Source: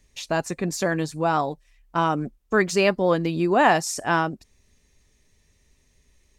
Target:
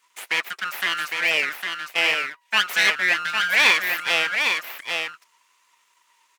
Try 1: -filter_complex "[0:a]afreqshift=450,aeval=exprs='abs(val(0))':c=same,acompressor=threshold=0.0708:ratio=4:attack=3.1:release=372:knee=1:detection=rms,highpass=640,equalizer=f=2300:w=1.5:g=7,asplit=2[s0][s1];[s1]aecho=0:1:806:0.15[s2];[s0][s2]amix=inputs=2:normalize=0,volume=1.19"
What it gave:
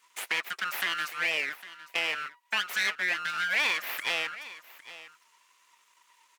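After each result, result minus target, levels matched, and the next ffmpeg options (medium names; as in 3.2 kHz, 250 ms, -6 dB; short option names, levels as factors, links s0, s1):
compression: peak gain reduction +11.5 dB; echo-to-direct -11.5 dB
-filter_complex "[0:a]afreqshift=450,aeval=exprs='abs(val(0))':c=same,highpass=640,equalizer=f=2300:w=1.5:g=7,asplit=2[s0][s1];[s1]aecho=0:1:806:0.15[s2];[s0][s2]amix=inputs=2:normalize=0,volume=1.19"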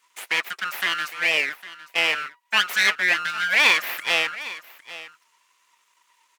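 echo-to-direct -11.5 dB
-filter_complex "[0:a]afreqshift=450,aeval=exprs='abs(val(0))':c=same,highpass=640,equalizer=f=2300:w=1.5:g=7,asplit=2[s0][s1];[s1]aecho=0:1:806:0.562[s2];[s0][s2]amix=inputs=2:normalize=0,volume=1.19"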